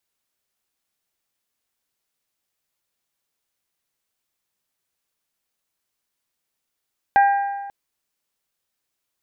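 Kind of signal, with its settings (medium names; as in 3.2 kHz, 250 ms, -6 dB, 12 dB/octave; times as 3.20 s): metal hit bell, length 0.54 s, lowest mode 800 Hz, modes 4, decay 1.45 s, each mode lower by 9 dB, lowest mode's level -10 dB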